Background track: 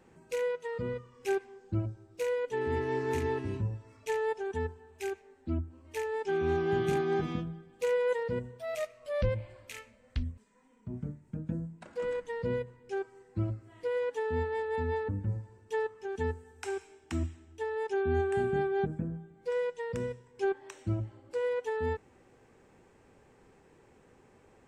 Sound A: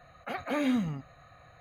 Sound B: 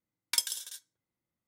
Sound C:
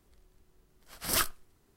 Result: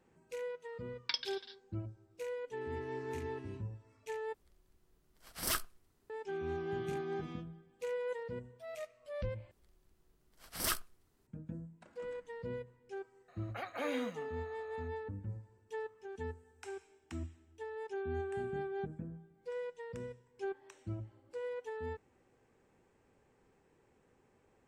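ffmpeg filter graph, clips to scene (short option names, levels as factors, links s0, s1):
-filter_complex "[3:a]asplit=2[s0][s1];[0:a]volume=0.335[s2];[2:a]aresample=11025,aresample=44100[s3];[1:a]highpass=360[s4];[s2]asplit=3[s5][s6][s7];[s5]atrim=end=4.344[s8];[s0]atrim=end=1.76,asetpts=PTS-STARTPTS,volume=0.473[s9];[s6]atrim=start=6.096:end=9.514[s10];[s1]atrim=end=1.76,asetpts=PTS-STARTPTS,volume=0.473[s11];[s7]atrim=start=11.266[s12];[s3]atrim=end=1.47,asetpts=PTS-STARTPTS,volume=0.75,afade=t=in:d=0.004:c=hsin,afade=t=out:st=1.466:d=0.004:c=hsin,adelay=760[s13];[s4]atrim=end=1.6,asetpts=PTS-STARTPTS,volume=0.501,afade=t=in:d=0.004:c=hsin,afade=t=out:st=1.596:d=0.004:c=hsin,adelay=13280[s14];[s8][s9]acrossfade=d=0.004:c1=hsin:c2=hsin[s15];[s15][s10]acrossfade=d=0.004:c1=hsin:c2=hsin[s16];[s16][s11]acrossfade=d=0.004:c1=hsin:c2=hsin[s17];[s17][s12]acrossfade=d=0.004:c1=hsin:c2=hsin[s18];[s18][s13][s14]amix=inputs=3:normalize=0"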